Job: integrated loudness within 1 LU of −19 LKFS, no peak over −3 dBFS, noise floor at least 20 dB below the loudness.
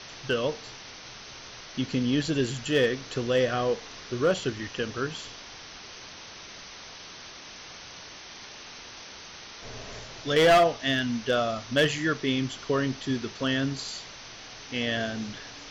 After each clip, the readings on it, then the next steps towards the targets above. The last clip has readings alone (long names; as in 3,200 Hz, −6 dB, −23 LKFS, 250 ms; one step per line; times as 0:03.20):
share of clipped samples 0.4%; peaks flattened at −15.0 dBFS; background noise floor −45 dBFS; target noise floor −47 dBFS; integrated loudness −27.0 LKFS; sample peak −15.0 dBFS; target loudness −19.0 LKFS
→ clipped peaks rebuilt −15 dBFS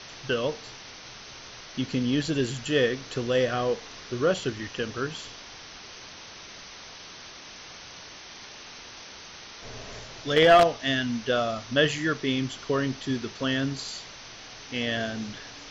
share of clipped samples 0.0%; background noise floor −45 dBFS; target noise floor −47 dBFS
→ noise reduction from a noise print 6 dB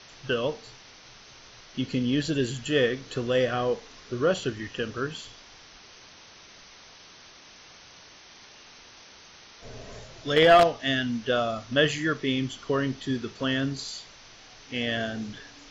background noise floor −51 dBFS; integrated loudness −26.5 LKFS; sample peak −6.0 dBFS; target loudness −19.0 LKFS
→ level +7.5 dB
brickwall limiter −3 dBFS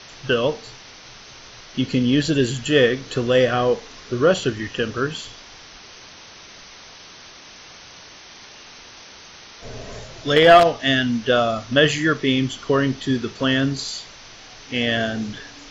integrated loudness −19.5 LKFS; sample peak −3.0 dBFS; background noise floor −43 dBFS